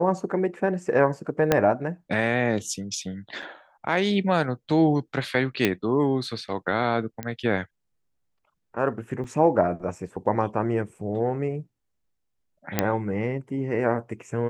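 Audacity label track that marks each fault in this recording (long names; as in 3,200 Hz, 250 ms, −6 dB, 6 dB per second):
1.520000	1.520000	click −5 dBFS
3.420000	3.430000	drop-out 5.4 ms
5.650000	5.650000	click −7 dBFS
7.230000	7.230000	click −16 dBFS
9.240000	9.240000	drop-out 4.2 ms
12.790000	12.790000	click −5 dBFS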